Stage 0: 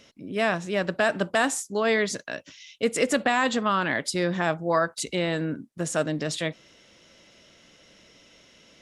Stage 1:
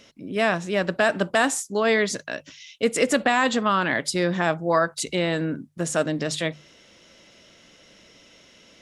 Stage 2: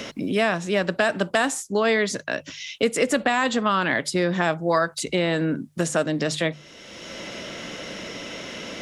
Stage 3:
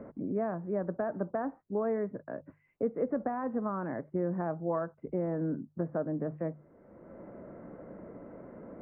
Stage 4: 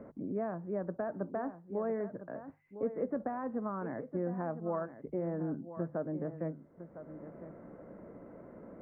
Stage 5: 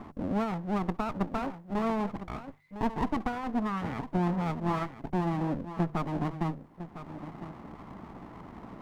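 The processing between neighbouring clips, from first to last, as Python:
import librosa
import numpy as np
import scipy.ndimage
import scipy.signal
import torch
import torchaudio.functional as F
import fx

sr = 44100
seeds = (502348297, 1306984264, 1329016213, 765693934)

y1 = fx.hum_notches(x, sr, base_hz=50, count=3)
y1 = y1 * librosa.db_to_amplitude(2.5)
y2 = fx.band_squash(y1, sr, depth_pct=70)
y3 = scipy.ndimage.gaussian_filter1d(y2, 8.0, mode='constant')
y3 = y3 * librosa.db_to_amplitude(-8.0)
y4 = y3 + 10.0 ** (-12.0 / 20.0) * np.pad(y3, (int(1006 * sr / 1000.0), 0))[:len(y3)]
y4 = y4 * librosa.db_to_amplitude(-3.5)
y5 = fx.lower_of_two(y4, sr, delay_ms=0.94)
y5 = y5 * librosa.db_to_amplitude(7.5)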